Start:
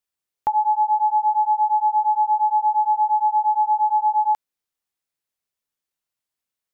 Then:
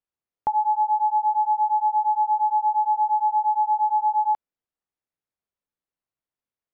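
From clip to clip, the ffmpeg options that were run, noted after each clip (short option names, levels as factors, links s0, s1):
-af "lowpass=f=1000:p=1"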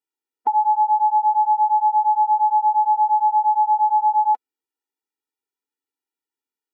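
-af "afftfilt=real='re*eq(mod(floor(b*sr/1024/250),2),1)':imag='im*eq(mod(floor(b*sr/1024/250),2),1)':win_size=1024:overlap=0.75,volume=1.58"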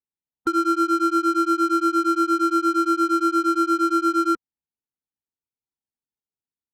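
-af "aeval=exprs='val(0)*sin(2*PI*520*n/s)':c=same,adynamicsmooth=sensitivity=7:basefreq=770"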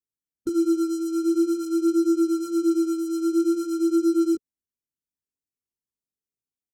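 -af "firequalizer=gain_entry='entry(420,0);entry(820,-25);entry(5700,-1)':delay=0.05:min_phase=1,flanger=delay=18:depth=4.2:speed=0.49,volume=1.5"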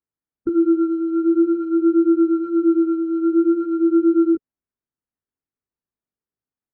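-af "lowpass=f=1800:w=0.5412,lowpass=f=1800:w=1.3066,volume=1.78"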